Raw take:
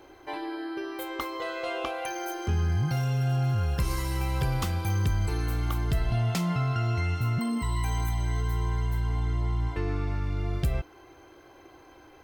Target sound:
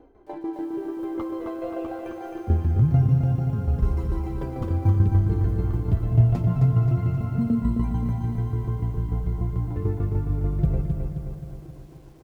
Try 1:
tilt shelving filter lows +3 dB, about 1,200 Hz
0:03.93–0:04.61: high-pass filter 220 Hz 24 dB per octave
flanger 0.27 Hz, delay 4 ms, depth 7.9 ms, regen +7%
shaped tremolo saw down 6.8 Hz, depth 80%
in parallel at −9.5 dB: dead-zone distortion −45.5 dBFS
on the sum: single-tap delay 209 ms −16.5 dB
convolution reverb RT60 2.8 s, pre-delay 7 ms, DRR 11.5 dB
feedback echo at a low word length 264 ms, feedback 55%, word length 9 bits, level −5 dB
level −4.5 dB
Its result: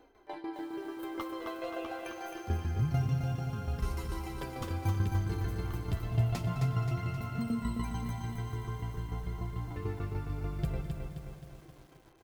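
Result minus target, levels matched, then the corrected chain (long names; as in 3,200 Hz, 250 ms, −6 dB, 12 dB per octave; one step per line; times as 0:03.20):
1,000 Hz band +8.0 dB
tilt shelving filter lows +14.5 dB, about 1,200 Hz
0:03.93–0:04.61: high-pass filter 220 Hz 24 dB per octave
flanger 0.27 Hz, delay 4 ms, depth 7.9 ms, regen +7%
shaped tremolo saw down 6.8 Hz, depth 80%
in parallel at −9.5 dB: dead-zone distortion −45.5 dBFS
on the sum: single-tap delay 209 ms −16.5 dB
convolution reverb RT60 2.8 s, pre-delay 7 ms, DRR 11.5 dB
feedback echo at a low word length 264 ms, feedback 55%, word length 9 bits, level −5 dB
level −4.5 dB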